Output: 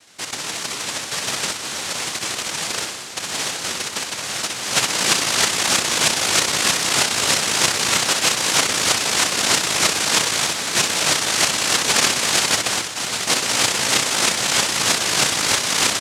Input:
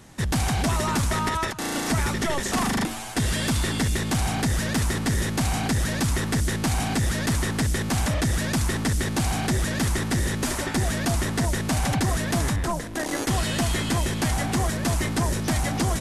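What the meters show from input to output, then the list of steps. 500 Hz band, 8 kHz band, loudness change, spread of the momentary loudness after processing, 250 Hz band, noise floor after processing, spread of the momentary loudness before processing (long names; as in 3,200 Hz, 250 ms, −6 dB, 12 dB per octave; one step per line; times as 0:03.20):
+2.5 dB, +12.0 dB, +7.0 dB, 8 LU, −6.5 dB, −30 dBFS, 2 LU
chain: stylus tracing distortion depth 0.17 ms
high-pass filter sweep 1,900 Hz → 140 Hz, 0:04.14–0:04.88
on a send: repeating echo 61 ms, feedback 45%, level −5 dB
on the sum: cochlear-implant simulation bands 1
level +1.5 dB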